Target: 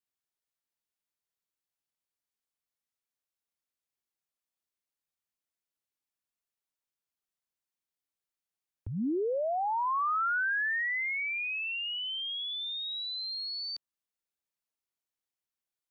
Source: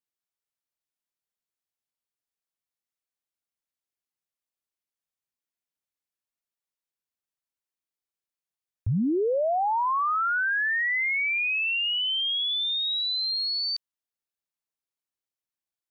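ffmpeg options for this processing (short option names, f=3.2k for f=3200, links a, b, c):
-filter_complex "[0:a]acrossover=split=250|1600[a][b][c];[a]acompressor=threshold=-39dB:ratio=4[d];[b]acompressor=threshold=-29dB:ratio=4[e];[c]acompressor=threshold=-36dB:ratio=4[f];[d][e][f]amix=inputs=3:normalize=0,volume=-1.5dB"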